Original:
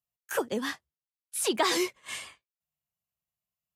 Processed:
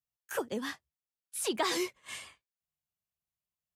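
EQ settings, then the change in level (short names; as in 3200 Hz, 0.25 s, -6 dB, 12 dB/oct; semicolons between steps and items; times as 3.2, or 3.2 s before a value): low shelf 110 Hz +5.5 dB; -5.0 dB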